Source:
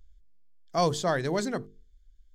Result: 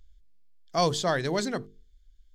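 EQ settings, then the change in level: peaking EQ 3.6 kHz +5 dB 1.6 oct; 0.0 dB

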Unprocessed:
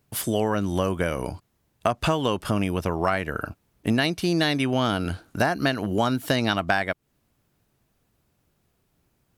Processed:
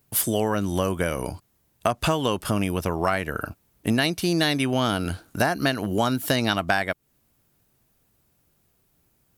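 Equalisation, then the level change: treble shelf 8.1 kHz +10.5 dB; 0.0 dB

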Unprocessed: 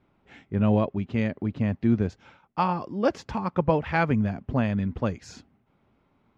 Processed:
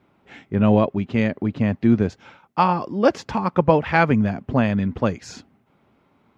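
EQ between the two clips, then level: high-pass 130 Hz 6 dB/octave; +7.0 dB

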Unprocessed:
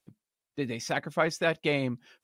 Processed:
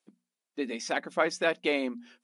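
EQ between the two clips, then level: brick-wall FIR band-pass 180–11000 Hz; hum notches 60/120/180/240 Hz; 0.0 dB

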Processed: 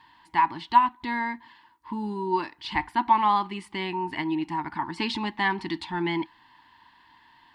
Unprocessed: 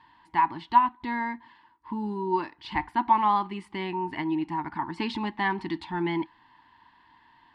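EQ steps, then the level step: treble shelf 2.7 kHz +9.5 dB; 0.0 dB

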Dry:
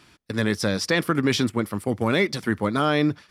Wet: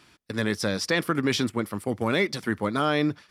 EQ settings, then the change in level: bass shelf 200 Hz -3.5 dB; -2.0 dB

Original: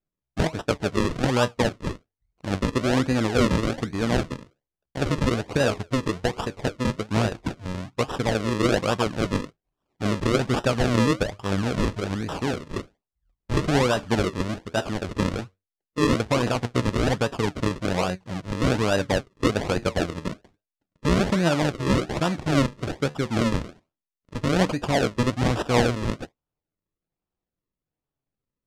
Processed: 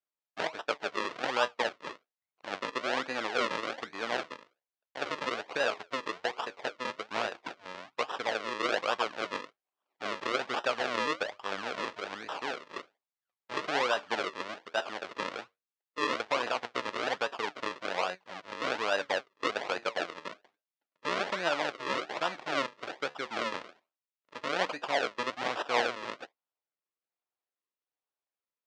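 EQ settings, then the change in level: band-pass 690–4300 Hz; -2.5 dB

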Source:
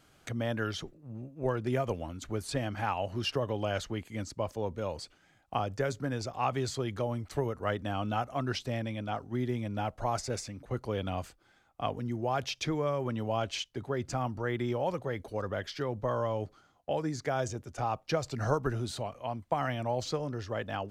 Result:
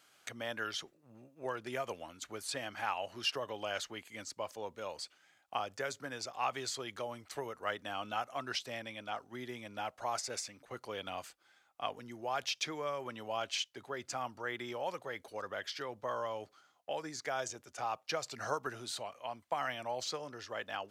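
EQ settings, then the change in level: high-pass 1.3 kHz 6 dB/octave; +1.0 dB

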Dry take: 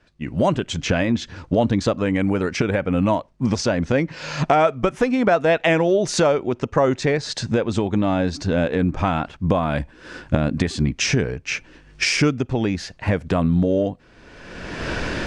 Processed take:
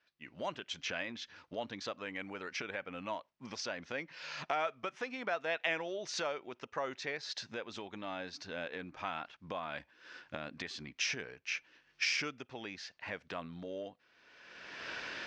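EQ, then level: band-pass filter 6.1 kHz, Q 3.8; distance through air 460 m; +13.5 dB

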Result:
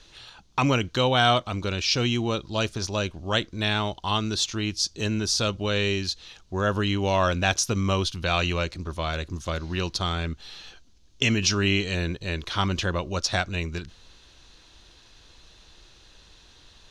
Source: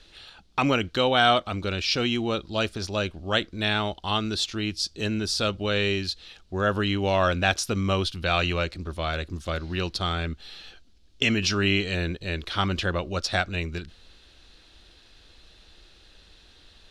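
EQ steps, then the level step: dynamic bell 1.1 kHz, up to -3 dB, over -33 dBFS, Q 0.88; graphic EQ with 31 bands 125 Hz +8 dB, 1 kHz +7 dB, 6.3 kHz +9 dB; 0.0 dB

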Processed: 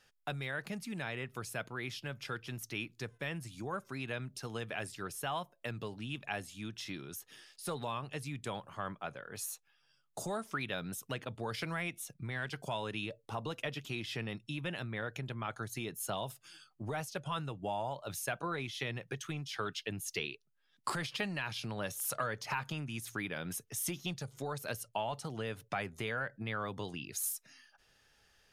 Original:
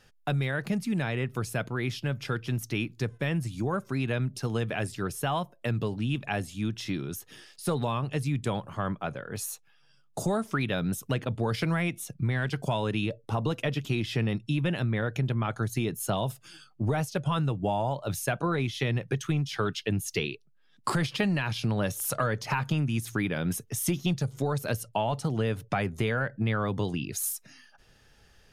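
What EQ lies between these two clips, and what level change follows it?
bass shelf 440 Hz -10 dB; -5.0 dB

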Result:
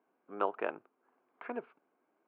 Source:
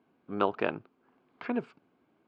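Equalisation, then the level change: band-pass 450–2800 Hz; distance through air 380 m; -1.5 dB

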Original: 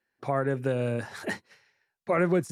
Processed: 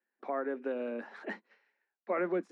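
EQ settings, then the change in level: steep high-pass 200 Hz 72 dB/octave; low-pass 2.4 kHz 12 dB/octave; -6.5 dB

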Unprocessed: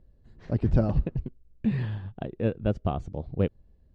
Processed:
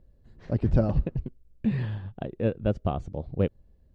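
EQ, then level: peaking EQ 550 Hz +3 dB 0.24 oct; 0.0 dB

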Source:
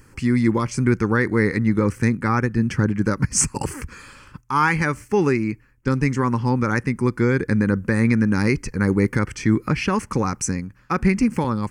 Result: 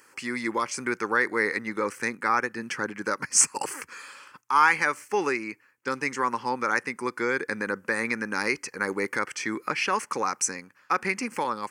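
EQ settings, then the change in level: high-pass 580 Hz 12 dB/octave; 0.0 dB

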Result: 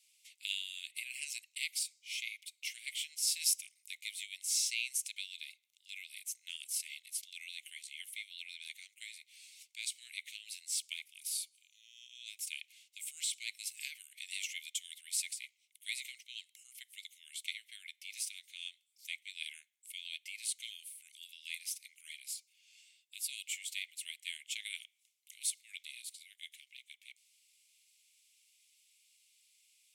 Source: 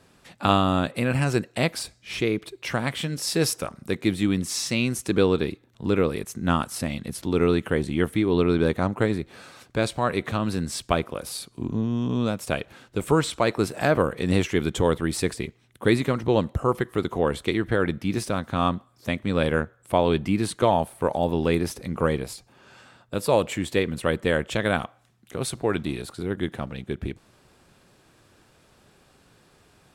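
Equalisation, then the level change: rippled Chebyshev high-pass 2.1 kHz, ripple 3 dB; treble shelf 5 kHz +9 dB; -8.0 dB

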